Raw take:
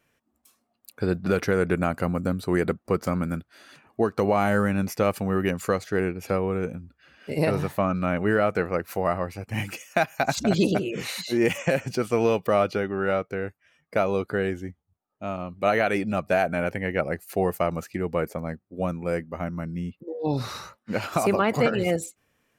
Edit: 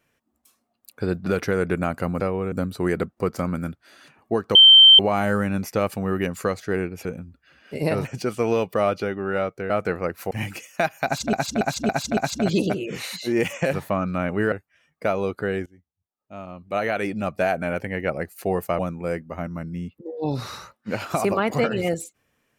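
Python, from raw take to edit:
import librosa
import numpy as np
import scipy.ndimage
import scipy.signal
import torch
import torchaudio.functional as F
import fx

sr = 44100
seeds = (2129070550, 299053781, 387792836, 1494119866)

y = fx.edit(x, sr, fx.insert_tone(at_s=4.23, length_s=0.44, hz=3120.0, db=-6.5),
    fx.move(start_s=6.29, length_s=0.32, to_s=2.2),
    fx.swap(start_s=7.61, length_s=0.79, other_s=11.78, other_length_s=1.65),
    fx.cut(start_s=9.01, length_s=0.47),
    fx.repeat(start_s=10.22, length_s=0.28, count=5),
    fx.fade_in_from(start_s=14.57, length_s=1.62, floor_db=-23.0),
    fx.cut(start_s=17.7, length_s=1.11), tone=tone)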